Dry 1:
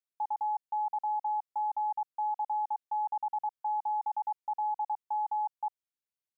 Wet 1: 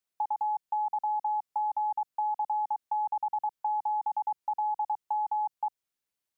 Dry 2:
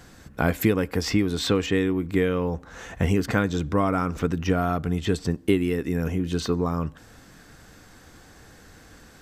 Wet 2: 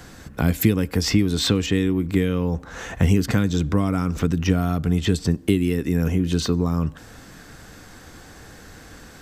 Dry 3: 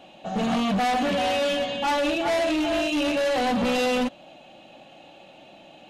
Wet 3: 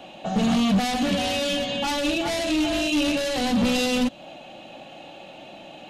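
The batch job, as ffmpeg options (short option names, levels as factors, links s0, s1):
-filter_complex "[0:a]acrossover=split=280|3000[s0][s1][s2];[s1]acompressor=threshold=0.02:ratio=5[s3];[s0][s3][s2]amix=inputs=3:normalize=0,volume=2"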